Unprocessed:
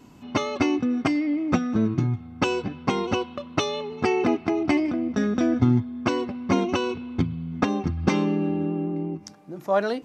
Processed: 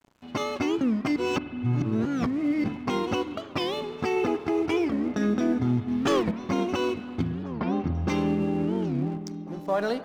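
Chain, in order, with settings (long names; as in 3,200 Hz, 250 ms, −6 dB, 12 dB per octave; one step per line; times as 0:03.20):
0:04.16–0:05.07: comb filter 2.3 ms, depth 37%
brickwall limiter −16.5 dBFS, peak gain reduction 9.5 dB
0:05.88–0:06.32: leveller curve on the samples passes 2
dead-zone distortion −45.5 dBFS
0:01.16–0:02.64: reverse
0:07.44–0:08.08: high-frequency loss of the air 170 metres
echo through a band-pass that steps 696 ms, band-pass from 270 Hz, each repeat 1.4 octaves, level −11.5 dB
spring reverb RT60 3.3 s, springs 48 ms, chirp 60 ms, DRR 13 dB
wow of a warped record 45 rpm, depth 250 cents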